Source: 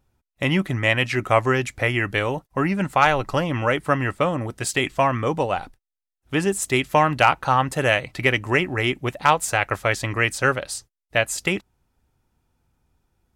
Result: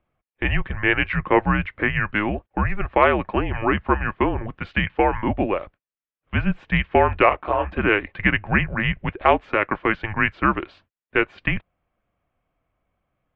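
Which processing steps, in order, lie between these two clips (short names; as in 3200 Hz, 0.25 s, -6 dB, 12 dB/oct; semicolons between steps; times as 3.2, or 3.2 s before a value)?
mistuned SSB -210 Hz 160–3100 Hz; 7.29–7.72 detuned doubles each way 34 cents; gain +1 dB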